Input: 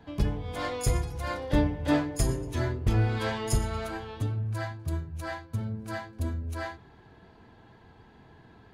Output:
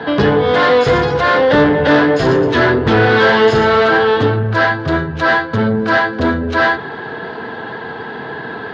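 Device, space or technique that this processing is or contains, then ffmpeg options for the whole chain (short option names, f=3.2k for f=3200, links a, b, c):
overdrive pedal into a guitar cabinet: -filter_complex "[0:a]asplit=2[a][b];[b]highpass=f=720:p=1,volume=30dB,asoftclip=type=tanh:threshold=-13.5dB[c];[a][c]amix=inputs=2:normalize=0,lowpass=f=4.9k:p=1,volume=-6dB,highpass=85,equalizer=f=150:t=q:w=4:g=5,equalizer=f=240:t=q:w=4:g=4,equalizer=f=450:t=q:w=4:g=8,equalizer=f=1.6k:t=q:w=4:g=6,equalizer=f=2.4k:t=q:w=4:g=-7,lowpass=f=4.2k:w=0.5412,lowpass=f=4.2k:w=1.3066,volume=7.5dB"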